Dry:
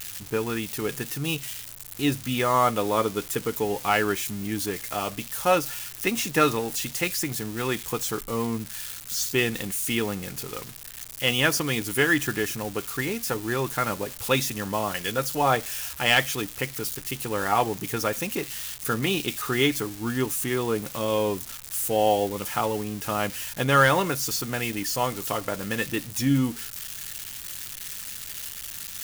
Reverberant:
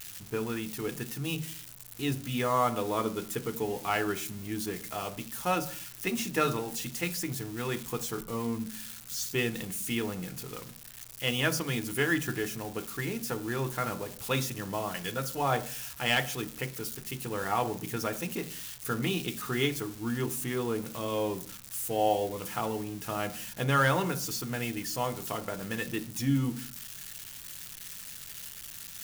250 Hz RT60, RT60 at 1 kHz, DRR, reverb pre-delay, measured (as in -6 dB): 0.80 s, 0.40 s, 9.5 dB, 3 ms